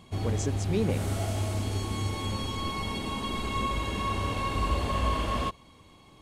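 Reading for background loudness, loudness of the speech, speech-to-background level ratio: -30.5 LUFS, -32.5 LUFS, -2.0 dB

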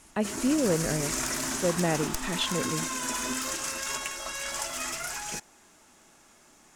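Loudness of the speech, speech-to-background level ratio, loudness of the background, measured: -30.0 LUFS, 1.5 dB, -31.5 LUFS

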